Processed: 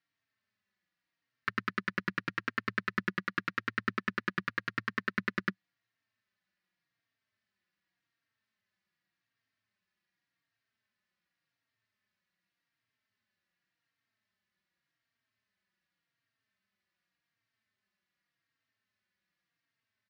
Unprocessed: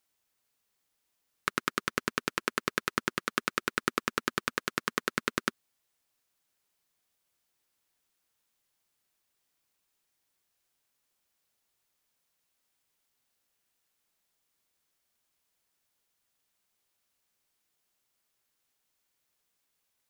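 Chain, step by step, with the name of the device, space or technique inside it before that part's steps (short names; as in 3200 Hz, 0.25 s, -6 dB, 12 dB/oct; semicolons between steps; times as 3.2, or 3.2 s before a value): barber-pole flanger into a guitar amplifier (endless flanger 3.8 ms -0.87 Hz; soft clip -18.5 dBFS, distortion -14 dB; speaker cabinet 82–4500 Hz, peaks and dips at 110 Hz +9 dB, 190 Hz +8 dB, 460 Hz -9 dB, 830 Hz -7 dB, 1800 Hz +9 dB, 3400 Hz -4 dB)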